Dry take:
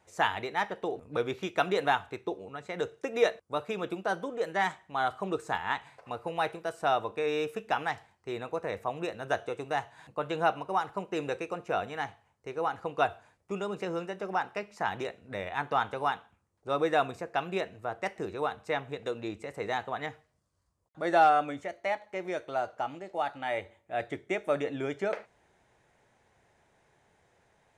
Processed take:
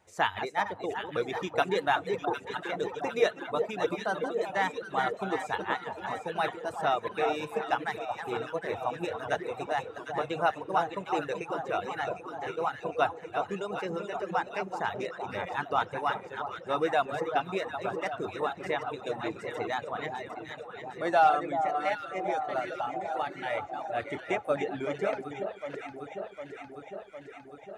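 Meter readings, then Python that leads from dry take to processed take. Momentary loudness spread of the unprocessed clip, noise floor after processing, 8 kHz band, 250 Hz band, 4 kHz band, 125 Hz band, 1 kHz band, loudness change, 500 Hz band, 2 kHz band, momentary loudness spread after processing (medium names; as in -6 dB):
9 LU, -48 dBFS, +0.5 dB, 0.0 dB, +0.5 dB, -0.5 dB, +1.0 dB, +0.5 dB, +1.0 dB, +1.0 dB, 9 LU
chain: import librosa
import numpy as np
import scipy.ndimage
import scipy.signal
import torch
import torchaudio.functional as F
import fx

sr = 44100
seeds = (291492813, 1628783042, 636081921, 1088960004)

y = fx.reverse_delay(x, sr, ms=322, wet_db=-6.5)
y = fx.echo_alternate(y, sr, ms=378, hz=1200.0, feedback_pct=82, wet_db=-6)
y = fx.dereverb_blind(y, sr, rt60_s=1.2)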